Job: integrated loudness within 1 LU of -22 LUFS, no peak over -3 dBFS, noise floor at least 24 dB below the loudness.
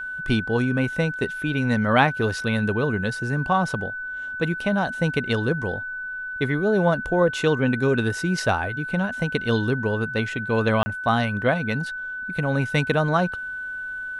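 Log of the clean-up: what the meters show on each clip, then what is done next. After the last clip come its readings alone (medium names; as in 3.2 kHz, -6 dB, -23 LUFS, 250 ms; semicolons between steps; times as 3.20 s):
dropouts 1; longest dropout 30 ms; steady tone 1.5 kHz; tone level -29 dBFS; loudness -23.5 LUFS; peak level -4.0 dBFS; loudness target -22.0 LUFS
-> interpolate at 10.83 s, 30 ms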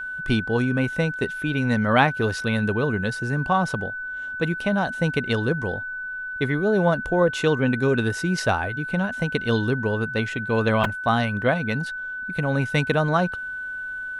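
dropouts 0; steady tone 1.5 kHz; tone level -29 dBFS
-> band-stop 1.5 kHz, Q 30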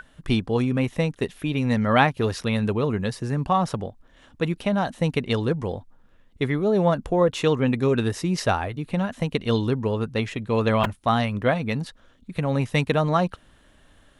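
steady tone not found; loudness -24.0 LUFS; peak level -4.0 dBFS; loudness target -22.0 LUFS
-> trim +2 dB; peak limiter -3 dBFS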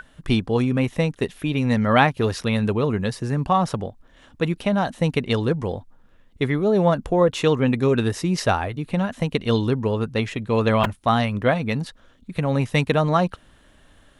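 loudness -22.0 LUFS; peak level -3.0 dBFS; noise floor -55 dBFS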